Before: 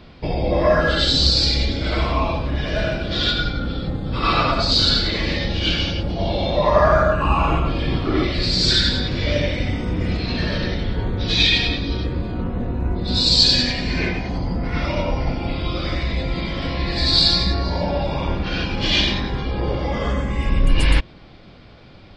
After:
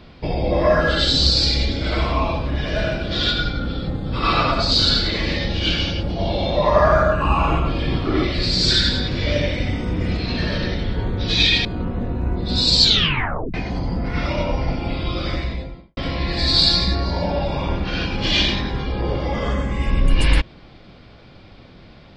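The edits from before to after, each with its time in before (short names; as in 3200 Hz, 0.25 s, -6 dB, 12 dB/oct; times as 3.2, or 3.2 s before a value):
11.65–12.24 cut
13.41 tape stop 0.72 s
15.86–16.56 studio fade out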